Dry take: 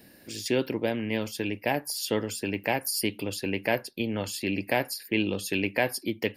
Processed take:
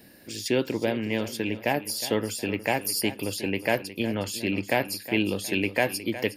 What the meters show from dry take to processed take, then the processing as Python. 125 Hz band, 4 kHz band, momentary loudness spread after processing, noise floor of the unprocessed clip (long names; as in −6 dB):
+1.5 dB, +1.5 dB, 4 LU, −54 dBFS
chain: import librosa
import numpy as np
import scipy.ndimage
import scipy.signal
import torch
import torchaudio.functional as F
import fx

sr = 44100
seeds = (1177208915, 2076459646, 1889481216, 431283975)

p1 = x + fx.echo_feedback(x, sr, ms=363, feedback_pct=33, wet_db=-14, dry=0)
y = F.gain(torch.from_numpy(p1), 1.5).numpy()